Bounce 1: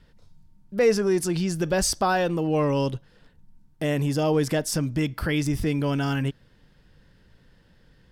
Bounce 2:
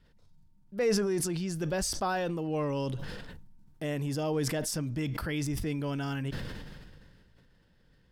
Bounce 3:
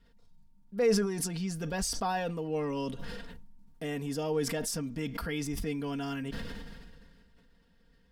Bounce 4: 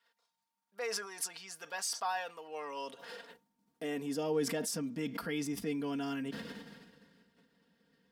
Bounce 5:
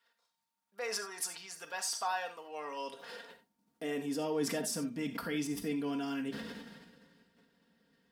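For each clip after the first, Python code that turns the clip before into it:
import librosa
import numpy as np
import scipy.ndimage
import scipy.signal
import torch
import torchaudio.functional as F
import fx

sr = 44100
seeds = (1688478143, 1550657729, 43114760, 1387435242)

y1 = fx.sustainer(x, sr, db_per_s=29.0)
y1 = y1 * librosa.db_to_amplitude(-8.5)
y2 = y1 + 0.7 * np.pad(y1, (int(4.3 * sr / 1000.0), 0))[:len(y1)]
y2 = y2 * librosa.db_to_amplitude(-2.5)
y3 = fx.filter_sweep_highpass(y2, sr, from_hz=920.0, to_hz=210.0, start_s=2.44, end_s=4.3, q=1.1)
y3 = y3 * librosa.db_to_amplitude(-2.5)
y4 = fx.rev_gated(y3, sr, seeds[0], gate_ms=110, shape='flat', drr_db=7.0)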